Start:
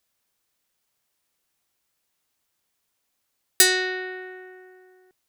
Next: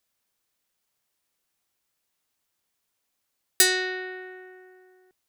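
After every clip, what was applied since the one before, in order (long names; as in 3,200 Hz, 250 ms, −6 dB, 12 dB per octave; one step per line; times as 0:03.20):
mains-hum notches 60/120 Hz
level −2.5 dB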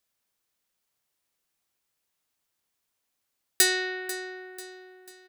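repeating echo 492 ms, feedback 42%, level −15 dB
level −2 dB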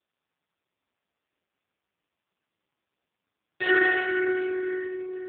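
high-frequency loss of the air 230 metres
rectangular room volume 140 cubic metres, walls hard, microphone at 1.2 metres
AMR narrowband 4.75 kbit/s 8,000 Hz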